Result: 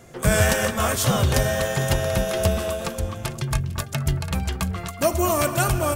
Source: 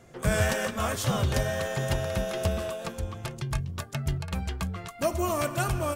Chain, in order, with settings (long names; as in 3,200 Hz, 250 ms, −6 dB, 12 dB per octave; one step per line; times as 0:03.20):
high-shelf EQ 7,600 Hz +7 dB
on a send: delay that swaps between a low-pass and a high-pass 226 ms, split 1,800 Hz, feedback 50%, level −12.5 dB
on the sum: level +6 dB